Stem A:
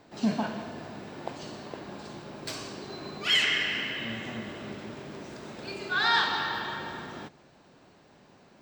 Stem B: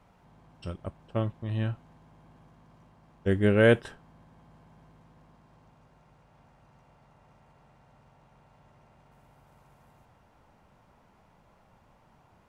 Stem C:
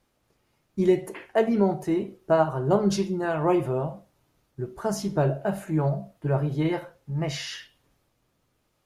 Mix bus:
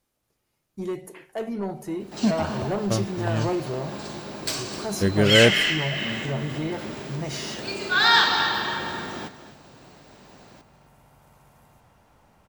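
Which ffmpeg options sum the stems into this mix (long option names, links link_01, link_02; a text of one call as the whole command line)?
ffmpeg -i stem1.wav -i stem2.wav -i stem3.wav -filter_complex "[0:a]adelay=2000,volume=1dB,asplit=2[link_01][link_02];[link_02]volume=-13.5dB[link_03];[1:a]adelay=1750,volume=-2dB[link_04];[2:a]asoftclip=type=tanh:threshold=-16.5dB,volume=-7.5dB,asplit=3[link_05][link_06][link_07];[link_06]volume=-20dB[link_08];[link_07]apad=whole_len=468001[link_09];[link_01][link_09]sidechaincompress=threshold=-34dB:ratio=8:attack=11:release=200[link_10];[link_03][link_08]amix=inputs=2:normalize=0,aecho=0:1:255:1[link_11];[link_10][link_04][link_05][link_11]amix=inputs=4:normalize=0,highshelf=frequency=5800:gain=9.5,dynaudnorm=framelen=600:gausssize=7:maxgain=5.5dB" out.wav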